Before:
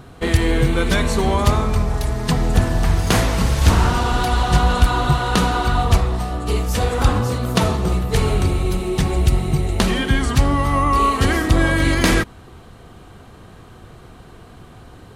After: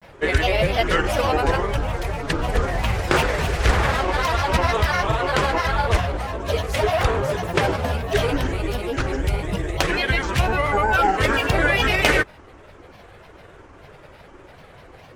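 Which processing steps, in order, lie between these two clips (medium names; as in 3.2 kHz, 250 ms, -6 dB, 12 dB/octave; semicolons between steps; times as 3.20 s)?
graphic EQ 250/500/2000 Hz -7/+11/+11 dB; granulator, spray 13 ms, pitch spread up and down by 7 st; trim -5 dB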